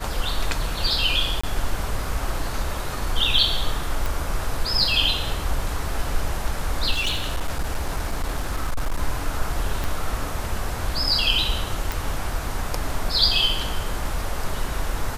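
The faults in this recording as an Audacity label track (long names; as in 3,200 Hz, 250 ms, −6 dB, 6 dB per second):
1.410000	1.440000	drop-out 25 ms
4.060000	4.060000	click
6.910000	9.020000	clipping −19 dBFS
9.840000	9.840000	click
11.920000	11.920000	click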